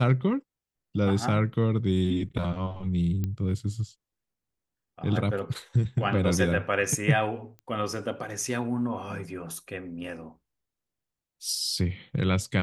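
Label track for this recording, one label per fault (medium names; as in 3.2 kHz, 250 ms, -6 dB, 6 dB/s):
3.240000	3.240000	pop -18 dBFS
7.590000	7.590000	pop -31 dBFS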